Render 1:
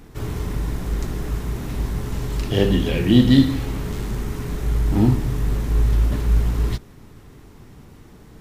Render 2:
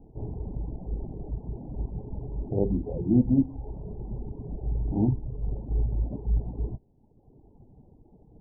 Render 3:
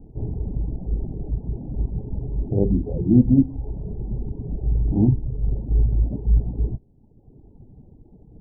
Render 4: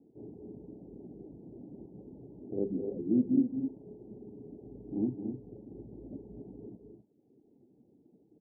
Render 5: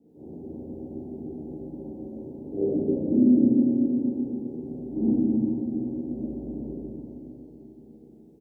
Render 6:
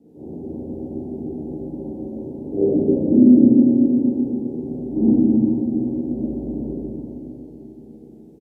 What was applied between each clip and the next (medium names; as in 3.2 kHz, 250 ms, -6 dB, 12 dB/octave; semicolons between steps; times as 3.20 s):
steep low-pass 880 Hz 72 dB/octave; reverb removal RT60 1.2 s; trim -6.5 dB
tilt shelf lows +7 dB, about 640 Hz; trim +1 dB
ladder band-pass 380 Hz, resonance 30%; on a send: loudspeakers at several distances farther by 75 m -10 dB, 88 m -8 dB
doubling 13 ms -3 dB; Schroeder reverb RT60 3.7 s, combs from 32 ms, DRR -9.5 dB
resampled via 32 kHz; trim +7.5 dB